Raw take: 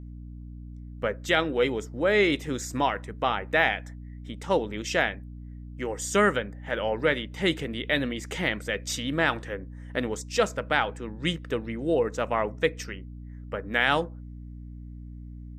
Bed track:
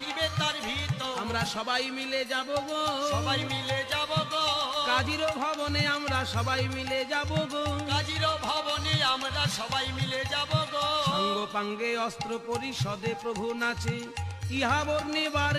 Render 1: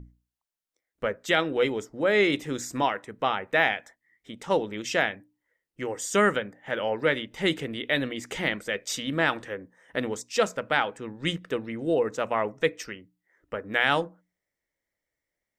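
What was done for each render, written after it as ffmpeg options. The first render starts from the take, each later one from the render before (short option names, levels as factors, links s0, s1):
-af "bandreject=f=60:t=h:w=6,bandreject=f=120:t=h:w=6,bandreject=f=180:t=h:w=6,bandreject=f=240:t=h:w=6,bandreject=f=300:t=h:w=6"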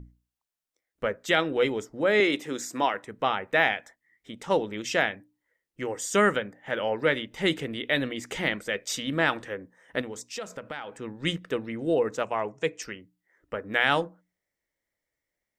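-filter_complex "[0:a]asettb=1/sr,asplit=3[s0][s1][s2];[s0]atrim=end=2.204[s3];[s1]atrim=start=2.2:end=2.94,asetpts=PTS-STARTPTS,afade=t=in:d=0.004:c=qsin,afade=t=out:st=0.736:d=0.004:c=qsin,highpass=230[s4];[s2]atrim=start=2.936[s5];[s3][s4]acrossfade=d=0.004:c1=hsin:c2=qsin[s6];[s6][s5]acrossfade=d=0.004:c1=qsin:c2=hsin,asettb=1/sr,asplit=3[s7][s8][s9];[s7]atrim=end=10.014[s10];[s8]atrim=start=10.01:end=10.95,asetpts=PTS-STARTPTS,afade=t=in:d=0.004:c=qsin,afade=t=out:st=0.936:d=0.004:c=qsin,acompressor=threshold=0.02:ratio=4:attack=3.2:release=140:knee=1:detection=peak[s11];[s9]atrim=start=10.946[s12];[s10][s11]acrossfade=d=0.004:c1=hsin:c2=qsin[s13];[s13][s12]acrossfade=d=0.004:c1=qsin:c2=hsin,asettb=1/sr,asplit=3[s14][s15][s16];[s14]atrim=end=12.234[s17];[s15]atrim=start=12.23:end=12.82,asetpts=PTS-STARTPTS,afade=t=in:d=0.004:c=qsin,afade=t=out:st=0.586:d=0.004:c=qsin,highpass=100,equalizer=f=250:t=q:w=4:g=-10,equalizer=f=540:t=q:w=4:g=-5,equalizer=f=1300:t=q:w=4:g=-6,equalizer=f=1900:t=q:w=4:g=-6,equalizer=f=3700:t=q:w=4:g=-6,equalizer=f=7100:t=q:w=4:g=6,lowpass=f=9000:w=0.5412,lowpass=f=9000:w=1.3066[s18];[s16]atrim=start=12.816[s19];[s17][s18]acrossfade=d=0.004:c1=hsin:c2=qsin[s20];[s20][s19]acrossfade=d=0.004:c1=qsin:c2=hsin"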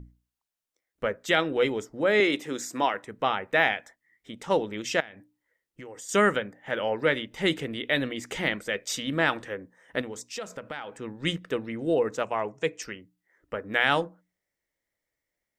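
-filter_complex "[0:a]asettb=1/sr,asplit=3[s0][s1][s2];[s0]atrim=end=5.004[s3];[s1]atrim=start=5:end=6.09,asetpts=PTS-STARTPTS,afade=t=in:d=0.004:c=qsin,afade=t=out:st=1.086:d=0.004:c=qsin,acompressor=threshold=0.01:ratio=5:attack=3.2:release=140:knee=1:detection=peak[s4];[s2]atrim=start=6.086[s5];[s3][s4]acrossfade=d=0.004:c1=hsin:c2=qsin[s6];[s6][s5]acrossfade=d=0.004:c1=qsin:c2=hsin"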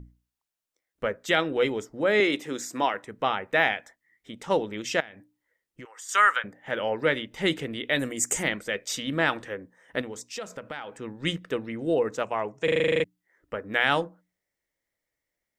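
-filter_complex "[0:a]asettb=1/sr,asplit=3[s0][s1][s2];[s0]atrim=end=5.854[s3];[s1]atrim=start=5.85:end=6.44,asetpts=PTS-STARTPTS,afade=t=in:d=0.004:c=qsin,afade=t=out:st=0.586:d=0.004:c=qsin,highpass=f=1200:t=q:w=2.1[s4];[s2]atrim=start=6.436[s5];[s3][s4]acrossfade=d=0.004:c1=hsin:c2=qsin[s6];[s6][s5]acrossfade=d=0.004:c1=qsin:c2=hsin,asettb=1/sr,asplit=3[s7][s8][s9];[s7]atrim=end=7.994[s10];[s8]atrim=start=7.99:end=8.43,asetpts=PTS-STARTPTS,afade=t=in:d=0.004:c=qsin,afade=t=out:st=0.436:d=0.004:c=qsin,highshelf=f=5300:t=q:w=3:g=13[s11];[s9]atrim=start=8.426[s12];[s10][s11]acrossfade=d=0.004:c1=hsin:c2=qsin[s13];[s13][s12]acrossfade=d=0.004:c1=qsin:c2=hsin,asplit=11[s14][s15][s16][s17][s18][s19][s20][s21][s22][s23][s24];[s14]atrim=end=12.682[s25];[s15]atrim=start=12.638:end=12.682[s26];[s16]atrim=start=12.638:end=12.682[s27];[s17]atrim=start=12.638:end=12.682[s28];[s18]atrim=start=12.638:end=12.682[s29];[s19]atrim=start=12.638:end=12.682[s30];[s20]atrim=start=12.638:end=12.682[s31];[s21]atrim=start=12.638:end=12.682[s32];[s22]atrim=start=12.638:end=12.682[s33];[s23]atrim=start=12.638:end=12.682[s34];[s24]atrim=start=13.038[s35];[s25][s26]acrossfade=d=0.004:c1=hsin:c2=hsin[s36];[s36][s27]acrossfade=d=0.004:c1=hsin:c2=hsin[s37];[s37][s28]acrossfade=d=0.004:c1=hsin:c2=hsin[s38];[s38][s29]acrossfade=d=0.004:c1=hsin:c2=hsin[s39];[s39][s30]acrossfade=d=0.004:c1=hsin:c2=hsin[s40];[s40][s31]acrossfade=d=0.004:c1=hsin:c2=hsin[s41];[s41][s32]acrossfade=d=0.004:c1=hsin:c2=hsin[s42];[s42][s33]acrossfade=d=0.004:c1=hsin:c2=hsin[s43];[s43][s34]acrossfade=d=0.004:c1=hsin:c2=hsin[s44];[s44][s35]acrossfade=d=0.004:c1=hsin:c2=hsin"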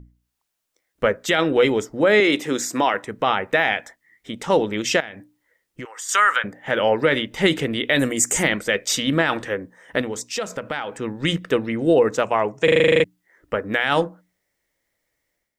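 -af "alimiter=limit=0.141:level=0:latency=1:release=38,dynaudnorm=f=100:g=5:m=2.99"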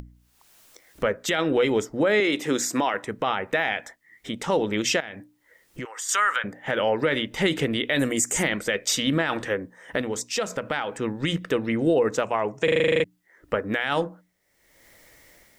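-af "acompressor=mode=upward:threshold=0.0178:ratio=2.5,alimiter=limit=0.224:level=0:latency=1:release=125"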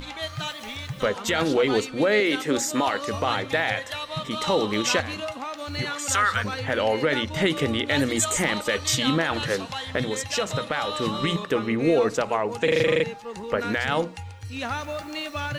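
-filter_complex "[1:a]volume=0.668[s0];[0:a][s0]amix=inputs=2:normalize=0"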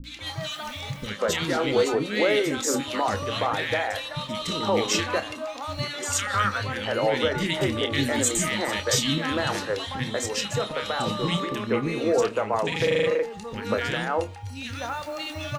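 -filter_complex "[0:a]asplit=2[s0][s1];[s1]adelay=29,volume=0.282[s2];[s0][s2]amix=inputs=2:normalize=0,acrossover=split=300|1800[s3][s4][s5];[s5]adelay=40[s6];[s4]adelay=190[s7];[s3][s7][s6]amix=inputs=3:normalize=0"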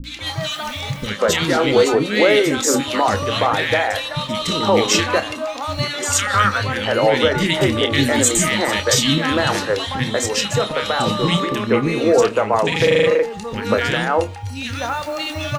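-af "volume=2.51,alimiter=limit=0.708:level=0:latency=1"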